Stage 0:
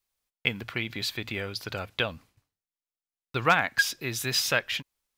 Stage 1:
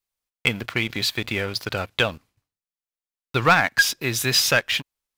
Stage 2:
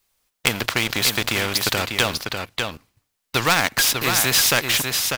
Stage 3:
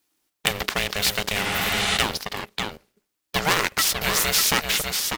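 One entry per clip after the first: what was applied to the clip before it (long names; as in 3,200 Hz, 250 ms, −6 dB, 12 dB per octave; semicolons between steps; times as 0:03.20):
leveller curve on the samples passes 2
single-tap delay 596 ms −10 dB; every bin compressed towards the loudest bin 2 to 1; level +4 dB
healed spectral selection 0:01.47–0:01.94, 290–11,000 Hz both; ring modulation 310 Hz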